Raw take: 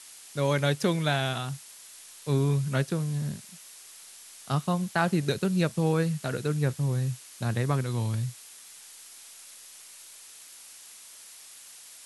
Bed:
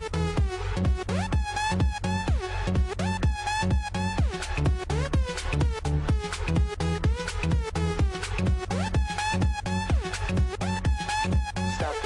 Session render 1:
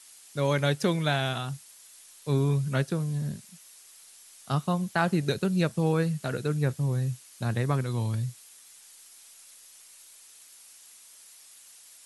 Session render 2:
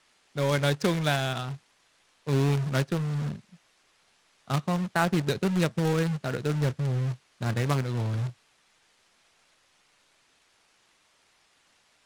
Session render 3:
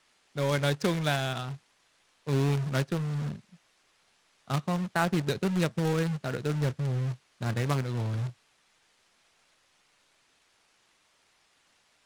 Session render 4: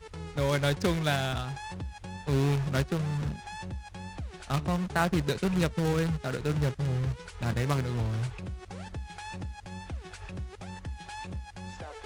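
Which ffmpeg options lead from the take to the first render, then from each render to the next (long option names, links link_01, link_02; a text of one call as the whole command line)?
ffmpeg -i in.wav -af "afftdn=noise_reduction=6:noise_floor=-49" out.wav
ffmpeg -i in.wav -af "acrusher=bits=2:mode=log:mix=0:aa=0.000001,adynamicsmooth=sensitivity=7.5:basefreq=2600" out.wav
ffmpeg -i in.wav -af "volume=-2dB" out.wav
ffmpeg -i in.wav -i bed.wav -filter_complex "[1:a]volume=-13.5dB[link_01];[0:a][link_01]amix=inputs=2:normalize=0" out.wav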